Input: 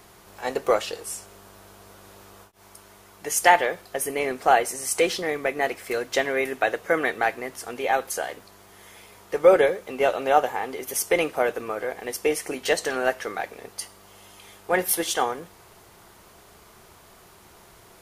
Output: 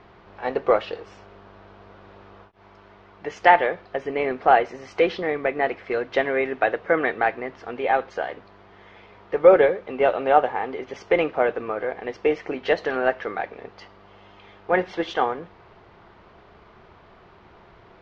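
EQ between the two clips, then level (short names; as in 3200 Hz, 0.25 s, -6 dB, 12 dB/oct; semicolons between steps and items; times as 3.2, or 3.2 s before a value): Gaussian blur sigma 2.7 samples; +2.5 dB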